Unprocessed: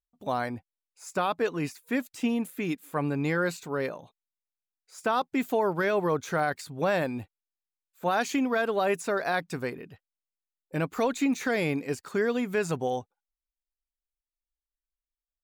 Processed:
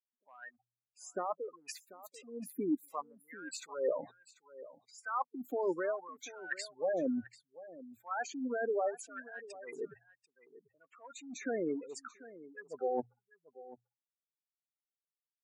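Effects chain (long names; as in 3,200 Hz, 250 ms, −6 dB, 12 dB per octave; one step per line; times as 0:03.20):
gate on every frequency bin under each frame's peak −10 dB strong
mains-hum notches 60/120 Hz
reversed playback
downward compressor 12 to 1, threshold −39 dBFS, peak gain reduction 17.5 dB
reversed playback
auto-filter high-pass sine 0.67 Hz 290–2,700 Hz
on a send: single-tap delay 740 ms −17.5 dB
on the sum: level +4.5 dB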